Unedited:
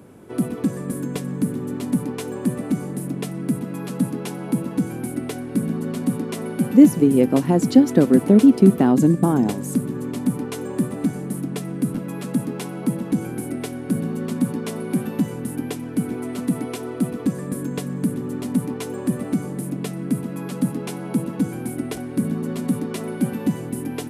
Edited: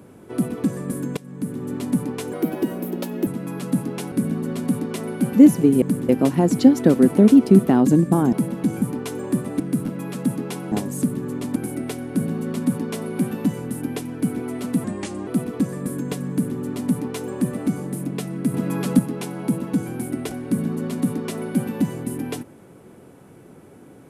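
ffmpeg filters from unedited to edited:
-filter_complex "[0:a]asplit=16[a][b][c][d][e][f][g][h][i][j][k][l][m][n][o][p];[a]atrim=end=1.17,asetpts=PTS-STARTPTS,afade=t=out:st=1.166:d=0.004:c=hsin:silence=0.125893[q];[b]atrim=start=1.17:end=2.334,asetpts=PTS-STARTPTS,afade=t=in:d=0.57:silence=0.125893[r];[c]atrim=start=2.33:end=3.54,asetpts=PTS-STARTPTS,asetrate=56889,aresample=44100,atrim=end_sample=41365,asetpts=PTS-STARTPTS[s];[d]atrim=start=3.536:end=4.392[t];[e]atrim=start=5.498:end=7.202[u];[f]atrim=start=17.958:end=18.232[v];[g]atrim=start=7.198:end=9.442[w];[h]atrim=start=12.808:end=13.302[x];[i]atrim=start=10.278:end=11.062[y];[j]atrim=start=11.688:end=12.812[z];[k]atrim=start=9.438:end=10.282[aa];[l]atrim=start=13.298:end=16.584[ab];[m]atrim=start=16.58:end=16.93,asetpts=PTS-STARTPTS,asetrate=35721,aresample=44100[ac];[n]atrim=start=16.926:end=20.202[ad];[o]atrim=start=20.198:end=20.652,asetpts=PTS-STARTPTS,volume=5.5dB[ae];[p]atrim=start=20.648[af];[q][r]concat=n=2:v=0:a=1[ag];[ag][s]acrossfade=d=0.004:c1=hsin:c2=hsin[ah];[ah][t]acrossfade=d=0.004:c1=hsin:c2=hsin[ai];[ai][u]acrossfade=d=0.004:c1=hsin:c2=hsin[aj];[aj][v]acrossfade=d=0.004:c1=hsin:c2=hsin[ak];[ak][w]acrossfade=d=0.004:c1=hsin:c2=hsin[al];[al][x]acrossfade=d=0.004:c1=hsin:c2=hsin[am];[am][y]acrossfade=d=0.004:c1=hsin:c2=hsin[an];[an][z]acrossfade=d=0.004:c1=hsin:c2=hsin[ao];[ao][aa]acrossfade=d=0.004:c1=hsin:c2=hsin[ap];[ap][ab]acrossfade=d=0.004:c1=hsin:c2=hsin[aq];[aq][ac]acrossfade=d=0.004:c1=hsin:c2=hsin[ar];[ar][ad]acrossfade=d=0.004:c1=hsin:c2=hsin[as];[as][ae]acrossfade=d=0.004:c1=hsin:c2=hsin[at];[at][af]acrossfade=d=0.004:c1=hsin:c2=hsin"

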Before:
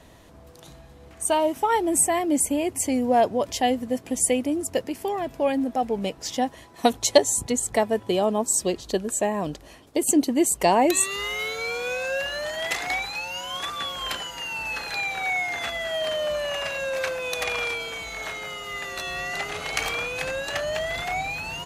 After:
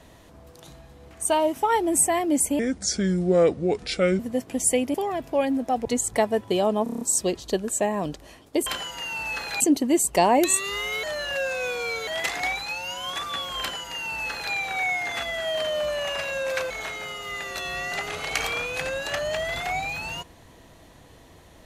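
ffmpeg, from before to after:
-filter_complex "[0:a]asplit=16[a][b][c][d][e][f][g][h][i][j][k][l][m][n][o][p];[a]atrim=end=2.594[q];[b]atrim=start=2.59:end=3.76,asetpts=PTS-STARTPTS,asetrate=32193,aresample=44100[r];[c]atrim=start=3.756:end=4.512[s];[d]atrim=start=5.008:end=5.922[t];[e]atrim=start=7.438:end=8.452[u];[f]atrim=start=8.418:end=8.452[v];[g]atrim=start=8.418:end=8.452[w];[h]atrim=start=8.418:end=8.452[x];[i]atrim=start=8.418:end=8.452[y];[j]atrim=start=8.418:end=8.452[z];[k]atrim=start=8.418:end=10.072[aa];[l]atrim=start=14.058:end=15.002[ab];[m]atrim=start=10.068:end=11.502[ac];[n]atrim=start=11.498:end=12.542,asetpts=PTS-STARTPTS,areverse[ad];[o]atrim=start=12.538:end=17.172[ae];[p]atrim=start=18.118[af];[q][r]acrossfade=d=0.004:c1=hsin:c2=hsin[ag];[ag][s]acrossfade=d=0.004:c1=hsin:c2=hsin[ah];[ah][t]acrossfade=d=0.004:c1=hsin:c2=hsin[ai];[ai][u]acrossfade=d=0.004:c1=hsin:c2=hsin[aj];[aj][v]acrossfade=d=0.004:c1=hsin:c2=hsin[ak];[ak][w]acrossfade=d=0.004:c1=hsin:c2=hsin[al];[al][x]acrossfade=d=0.004:c1=hsin:c2=hsin[am];[am][y]acrossfade=d=0.004:c1=hsin:c2=hsin[an];[an][z]acrossfade=d=0.004:c1=hsin:c2=hsin[ao];[ao][aa]acrossfade=d=0.004:c1=hsin:c2=hsin[ap];[ap][ab]acrossfade=d=0.004:c1=hsin:c2=hsin[aq];[aq][ac]acrossfade=d=0.004:c1=hsin:c2=hsin[ar];[ar][ad]acrossfade=d=0.004:c1=hsin:c2=hsin[as];[as][ae]acrossfade=d=0.004:c1=hsin:c2=hsin[at];[at][af]acrossfade=d=0.004:c1=hsin:c2=hsin"

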